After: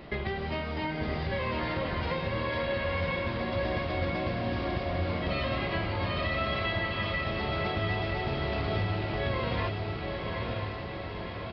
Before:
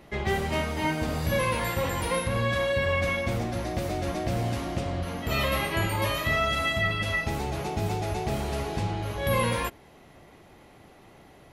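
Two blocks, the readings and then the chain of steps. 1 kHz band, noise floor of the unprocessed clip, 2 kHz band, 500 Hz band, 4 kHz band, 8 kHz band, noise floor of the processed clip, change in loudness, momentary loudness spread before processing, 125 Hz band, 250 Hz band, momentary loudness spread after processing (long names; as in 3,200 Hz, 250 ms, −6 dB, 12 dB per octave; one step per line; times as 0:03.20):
−3.5 dB, −53 dBFS, −3.5 dB, −2.5 dB, −3.0 dB, below −30 dB, −37 dBFS, −3.5 dB, 6 LU, −2.5 dB, −2.0 dB, 4 LU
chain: notch filter 830 Hz, Q 20
downward compressor 6 to 1, threshold −36 dBFS, peak gain reduction 14.5 dB
on a send: feedback delay with all-pass diffusion 978 ms, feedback 63%, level −3 dB
on the sum: downsampling to 11,025 Hz
level +5.5 dB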